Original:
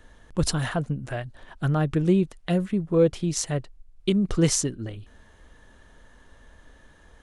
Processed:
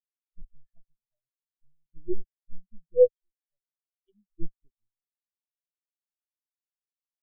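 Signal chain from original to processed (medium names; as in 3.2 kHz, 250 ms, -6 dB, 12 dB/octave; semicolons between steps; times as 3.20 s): LPC vocoder at 8 kHz pitch kept; 0.82–1.93 s: compression 6:1, threshold -26 dBFS, peak gain reduction 9 dB; 3.16–4.40 s: tilt shelf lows -9.5 dB, about 940 Hz; spectral contrast expander 4:1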